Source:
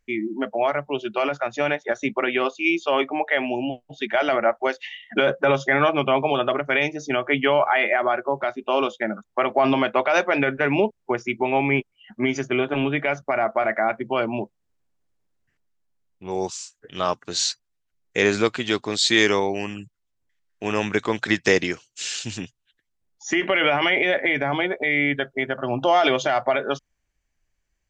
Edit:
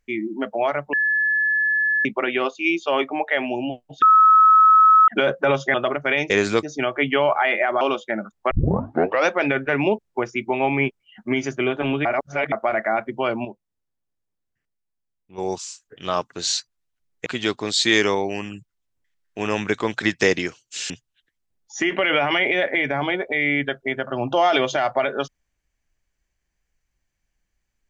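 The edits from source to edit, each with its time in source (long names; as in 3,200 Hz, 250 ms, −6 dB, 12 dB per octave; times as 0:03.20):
0:00.93–0:02.05: beep over 1,720 Hz −17 dBFS
0:04.02–0:05.08: beep over 1,290 Hz −9 dBFS
0:05.74–0:06.38: remove
0:08.12–0:08.73: remove
0:09.43: tape start 0.77 s
0:12.97–0:13.44: reverse
0:14.37–0:16.30: clip gain −8 dB
0:18.18–0:18.51: move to 0:06.94
0:22.15–0:22.41: remove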